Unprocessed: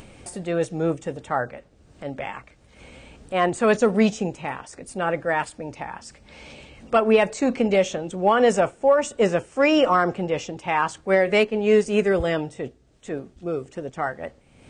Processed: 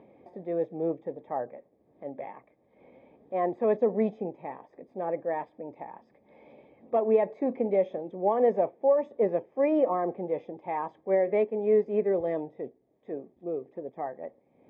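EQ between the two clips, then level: boxcar filter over 31 samples; Bessel high-pass 420 Hz, order 2; distance through air 300 m; 0.0 dB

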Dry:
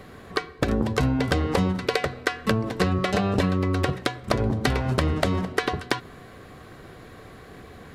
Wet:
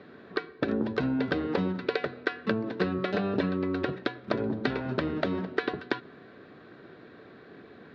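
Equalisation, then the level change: distance through air 50 m; cabinet simulation 240–3700 Hz, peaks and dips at 510 Hz -5 dB, 760 Hz -8 dB, 1.1 kHz -9 dB, 2.1 kHz -8 dB, 3 kHz -8 dB; 0.0 dB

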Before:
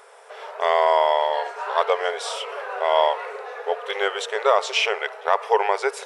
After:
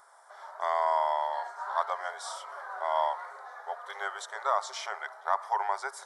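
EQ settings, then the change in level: static phaser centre 1.1 kHz, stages 4; -6.0 dB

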